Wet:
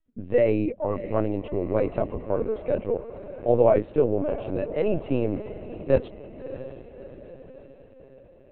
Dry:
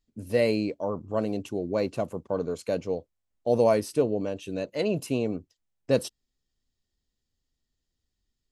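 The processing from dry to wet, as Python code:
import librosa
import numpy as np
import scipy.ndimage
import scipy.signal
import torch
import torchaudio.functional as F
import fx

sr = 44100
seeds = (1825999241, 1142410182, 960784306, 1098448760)

y = scipy.signal.sosfilt(scipy.signal.butter(2, 2100.0, 'lowpass', fs=sr, output='sos'), x)
y = fx.echo_diffused(y, sr, ms=638, feedback_pct=55, wet_db=-13)
y = fx.lpc_vocoder(y, sr, seeds[0], excitation='pitch_kept', order=16)
y = F.gain(torch.from_numpy(y), 3.0).numpy()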